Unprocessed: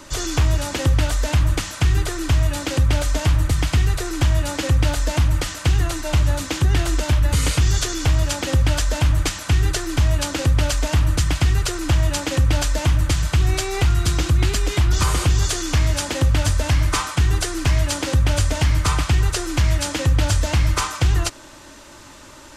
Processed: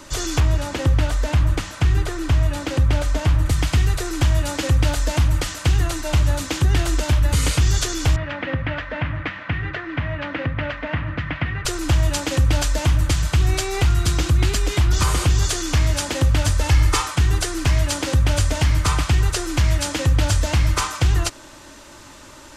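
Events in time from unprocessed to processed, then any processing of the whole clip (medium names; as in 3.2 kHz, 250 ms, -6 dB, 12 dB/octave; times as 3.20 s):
0.40–3.46 s: treble shelf 3.7 kHz -8 dB
8.16–11.65 s: cabinet simulation 130–2600 Hz, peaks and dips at 380 Hz -9 dB, 820 Hz -4 dB, 1.9 kHz +6 dB
16.60–17.08 s: comb 2.3 ms, depth 54%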